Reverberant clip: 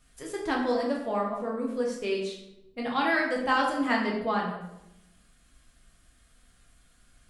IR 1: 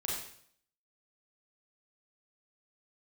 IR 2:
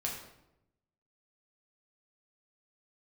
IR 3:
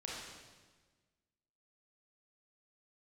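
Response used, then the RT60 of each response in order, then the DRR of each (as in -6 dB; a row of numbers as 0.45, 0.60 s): 2; 0.60, 0.85, 1.4 s; -4.5, -2.5, -4.5 dB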